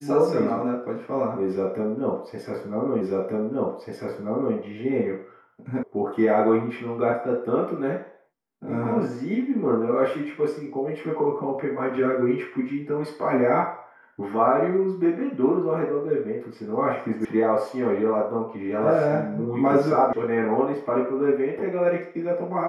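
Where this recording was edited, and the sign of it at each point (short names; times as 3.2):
3.01 repeat of the last 1.54 s
5.83 sound cut off
17.25 sound cut off
20.13 sound cut off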